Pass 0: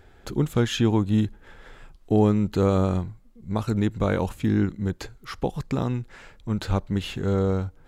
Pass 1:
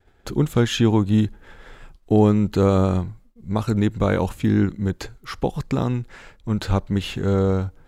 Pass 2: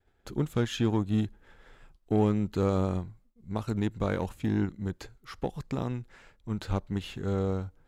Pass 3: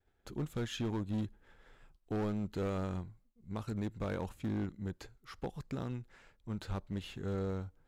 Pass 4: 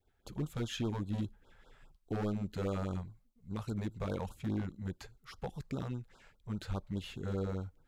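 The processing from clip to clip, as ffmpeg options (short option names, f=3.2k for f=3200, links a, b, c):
-af "agate=range=-33dB:threshold=-44dB:ratio=3:detection=peak,volume=3.5dB"
-af "aeval=exprs='0.531*(cos(1*acos(clip(val(0)/0.531,-1,1)))-cos(1*PI/2))+0.0188*(cos(7*acos(clip(val(0)/0.531,-1,1)))-cos(7*PI/2))':c=same,volume=-9dB"
-af "volume=24.5dB,asoftclip=hard,volume=-24.5dB,volume=-6dB"
-af "afftfilt=real='re*(1-between(b*sr/1024,260*pow(2300/260,0.5+0.5*sin(2*PI*4.9*pts/sr))/1.41,260*pow(2300/260,0.5+0.5*sin(2*PI*4.9*pts/sr))*1.41))':imag='im*(1-between(b*sr/1024,260*pow(2300/260,0.5+0.5*sin(2*PI*4.9*pts/sr))/1.41,260*pow(2300/260,0.5+0.5*sin(2*PI*4.9*pts/sr))*1.41))':win_size=1024:overlap=0.75,volume=1dB"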